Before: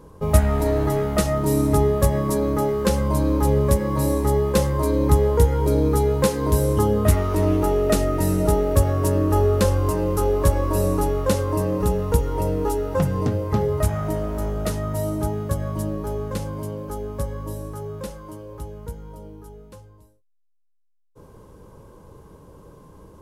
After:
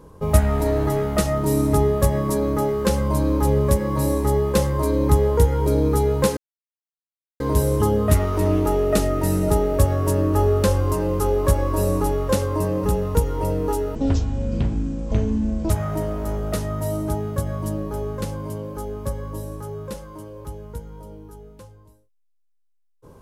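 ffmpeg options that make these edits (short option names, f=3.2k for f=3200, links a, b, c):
-filter_complex "[0:a]asplit=4[a][b][c][d];[a]atrim=end=6.37,asetpts=PTS-STARTPTS,afade=t=out:st=6.366:d=0.004:c=hsin,apad=pad_dur=1.03[e];[b]atrim=start=6.37:end=12.924,asetpts=PTS-STARTPTS,afade=t=in:d=0.004:c=hsin[f];[c]atrim=start=12.92:end=13.83,asetpts=PTS-STARTPTS,asetrate=22932,aresample=44100[g];[d]atrim=start=13.826[h];[e][f]concat=n=2:v=0:a=1[i];[i][g]acrossfade=d=0.004:c1=hsin:c2=hsin[j];[j][h]acrossfade=d=0.004:c1=hsin:c2=hsin"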